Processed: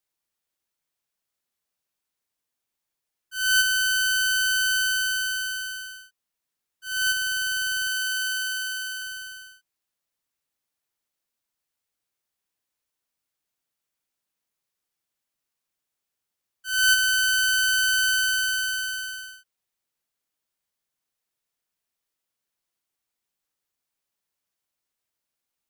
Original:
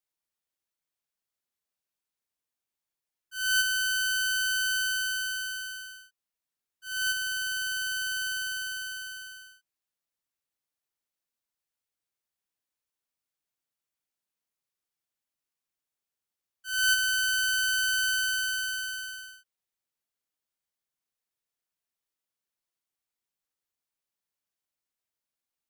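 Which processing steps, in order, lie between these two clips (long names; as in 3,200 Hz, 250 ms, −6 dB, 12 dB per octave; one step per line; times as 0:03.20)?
0:07.88–0:09.02: high-pass filter 960 Hz 12 dB per octave
level +5 dB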